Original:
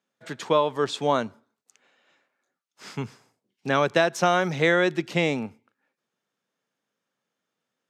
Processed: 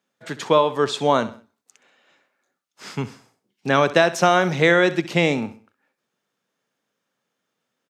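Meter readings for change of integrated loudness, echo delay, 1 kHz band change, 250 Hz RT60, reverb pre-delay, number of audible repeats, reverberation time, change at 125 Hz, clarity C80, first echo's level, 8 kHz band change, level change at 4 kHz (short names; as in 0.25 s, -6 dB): +4.5 dB, 65 ms, +4.5 dB, none, none, 3, none, +4.5 dB, none, -15.5 dB, +4.5 dB, +4.5 dB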